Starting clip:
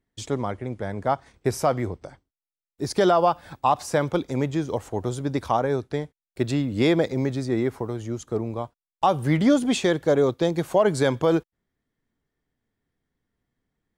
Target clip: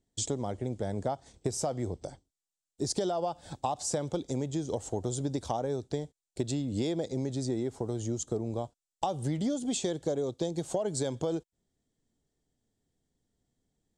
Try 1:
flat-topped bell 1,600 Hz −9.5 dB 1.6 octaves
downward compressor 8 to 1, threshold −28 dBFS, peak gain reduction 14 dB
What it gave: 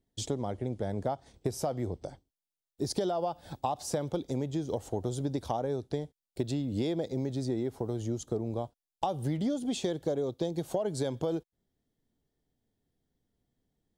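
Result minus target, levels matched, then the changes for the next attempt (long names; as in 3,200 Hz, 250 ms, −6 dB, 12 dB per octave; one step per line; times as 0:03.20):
8,000 Hz band −6.5 dB
add first: low-pass with resonance 7,800 Hz, resonance Q 3.2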